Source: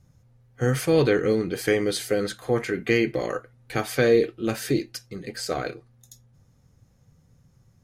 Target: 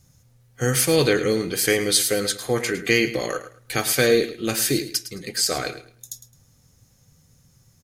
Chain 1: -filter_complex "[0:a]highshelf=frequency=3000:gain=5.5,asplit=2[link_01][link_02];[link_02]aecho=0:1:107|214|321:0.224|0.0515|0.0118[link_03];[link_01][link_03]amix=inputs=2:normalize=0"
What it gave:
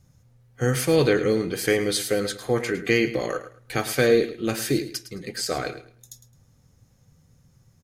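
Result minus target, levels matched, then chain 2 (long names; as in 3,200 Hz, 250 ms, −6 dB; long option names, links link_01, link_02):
8,000 Hz band −6.0 dB
-filter_complex "[0:a]highshelf=frequency=3000:gain=15.5,asplit=2[link_01][link_02];[link_02]aecho=0:1:107|214|321:0.224|0.0515|0.0118[link_03];[link_01][link_03]amix=inputs=2:normalize=0"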